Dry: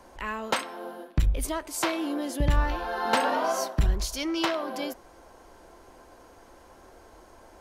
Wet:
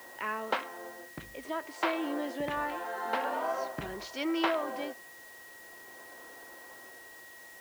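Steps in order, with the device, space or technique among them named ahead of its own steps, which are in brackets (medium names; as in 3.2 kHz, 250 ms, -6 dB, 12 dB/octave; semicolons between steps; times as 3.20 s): shortwave radio (band-pass 280–2700 Hz; tremolo 0.47 Hz, depth 57%; whistle 1.9 kHz -50 dBFS; white noise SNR 20 dB); 1.74–2.57 s: bass shelf 200 Hz -7 dB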